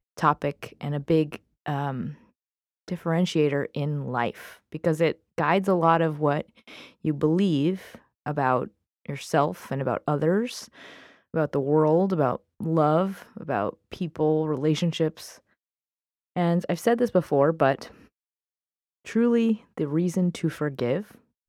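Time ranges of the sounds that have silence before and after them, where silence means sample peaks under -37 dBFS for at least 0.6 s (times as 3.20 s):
2.88–15.32 s
16.36–17.91 s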